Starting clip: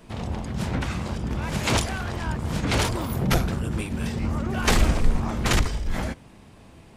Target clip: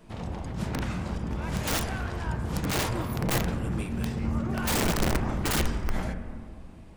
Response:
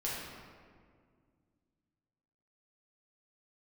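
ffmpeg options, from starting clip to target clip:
-filter_complex "[0:a]aeval=exprs='(mod(6.31*val(0)+1,2)-1)/6.31':channel_layout=same,asplit=2[link_01][link_02];[1:a]atrim=start_sample=2205,lowpass=2200[link_03];[link_02][link_03]afir=irnorm=-1:irlink=0,volume=-7.5dB[link_04];[link_01][link_04]amix=inputs=2:normalize=0,volume=-6.5dB"

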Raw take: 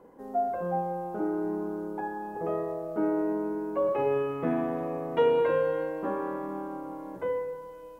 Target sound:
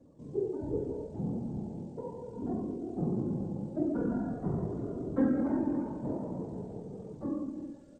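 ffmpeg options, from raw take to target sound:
ffmpeg -i in.wav -filter_complex "[0:a]asplit=2[link_01][link_02];[link_02]adelay=346,lowpass=frequency=1300:poles=1,volume=-8dB,asplit=2[link_03][link_04];[link_04]adelay=346,lowpass=frequency=1300:poles=1,volume=0.26,asplit=2[link_05][link_06];[link_06]adelay=346,lowpass=frequency=1300:poles=1,volume=0.26[link_07];[link_01][link_03][link_05][link_07]amix=inputs=4:normalize=0,afftfilt=real='hypot(re,im)*cos(2*PI*random(0))':imag='hypot(re,im)*sin(2*PI*random(1))':win_size=512:overlap=0.75,asetrate=24750,aresample=44100,atempo=1.7818,volume=2dB" out.wav

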